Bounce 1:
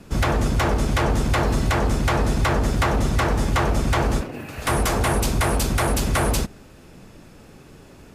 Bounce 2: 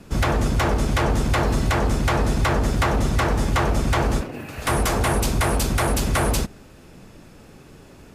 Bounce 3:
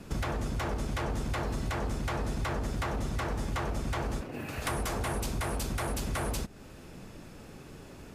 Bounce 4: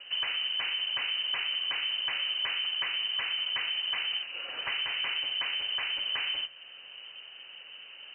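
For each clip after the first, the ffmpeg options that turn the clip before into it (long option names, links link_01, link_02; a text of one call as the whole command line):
ffmpeg -i in.wav -af anull out.wav
ffmpeg -i in.wav -af "acompressor=threshold=-31dB:ratio=3,volume=-2dB" out.wav
ffmpeg -i in.wav -af "lowpass=frequency=2600:width_type=q:width=0.5098,lowpass=frequency=2600:width_type=q:width=0.6013,lowpass=frequency=2600:width_type=q:width=0.9,lowpass=frequency=2600:width_type=q:width=2.563,afreqshift=-3100,bandreject=frequency=65.31:width_type=h:width=4,bandreject=frequency=130.62:width_type=h:width=4,bandreject=frequency=195.93:width_type=h:width=4,bandreject=frequency=261.24:width_type=h:width=4,bandreject=frequency=326.55:width_type=h:width=4,bandreject=frequency=391.86:width_type=h:width=4,bandreject=frequency=457.17:width_type=h:width=4,bandreject=frequency=522.48:width_type=h:width=4,bandreject=frequency=587.79:width_type=h:width=4,bandreject=frequency=653.1:width_type=h:width=4,bandreject=frequency=718.41:width_type=h:width=4,bandreject=frequency=783.72:width_type=h:width=4,bandreject=frequency=849.03:width_type=h:width=4,bandreject=frequency=914.34:width_type=h:width=4,bandreject=frequency=979.65:width_type=h:width=4,bandreject=frequency=1044.96:width_type=h:width=4,bandreject=frequency=1110.27:width_type=h:width=4,bandreject=frequency=1175.58:width_type=h:width=4,bandreject=frequency=1240.89:width_type=h:width=4,bandreject=frequency=1306.2:width_type=h:width=4,bandreject=frequency=1371.51:width_type=h:width=4,bandreject=frequency=1436.82:width_type=h:width=4,bandreject=frequency=1502.13:width_type=h:width=4,bandreject=frequency=1567.44:width_type=h:width=4,bandreject=frequency=1632.75:width_type=h:width=4,bandreject=frequency=1698.06:width_type=h:width=4,bandreject=frequency=1763.37:width_type=h:width=4,bandreject=frequency=1828.68:width_type=h:width=4,bandreject=frequency=1893.99:width_type=h:width=4,bandreject=frequency=1959.3:width_type=h:width=4,bandreject=frequency=2024.61:width_type=h:width=4,bandreject=frequency=2089.92:width_type=h:width=4,bandreject=frequency=2155.23:width_type=h:width=4,bandreject=frequency=2220.54:width_type=h:width=4,bandreject=frequency=2285.85:width_type=h:width=4,bandreject=frequency=2351.16:width_type=h:width=4,bandreject=frequency=2416.47:width_type=h:width=4" out.wav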